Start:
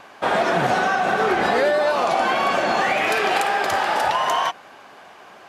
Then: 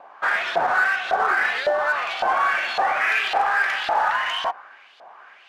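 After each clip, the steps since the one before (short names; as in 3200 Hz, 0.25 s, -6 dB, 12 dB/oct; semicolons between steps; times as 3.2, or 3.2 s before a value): dynamic EQ 1600 Hz, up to +6 dB, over -36 dBFS, Q 1.3; LFO band-pass saw up 1.8 Hz 660–4000 Hz; in parallel at -8 dB: overloaded stage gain 29.5 dB; on the sum: gain +1 dB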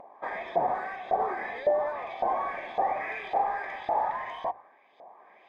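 running mean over 31 samples; notches 60/120 Hz; upward compressor, threshold -47 dBFS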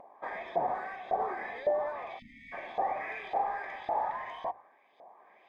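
spectral delete 2.19–2.52, 300–1800 Hz; gain -4 dB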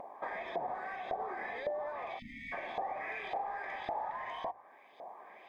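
compressor 3:1, threshold -45 dBFS, peak gain reduction 15.5 dB; gain +6 dB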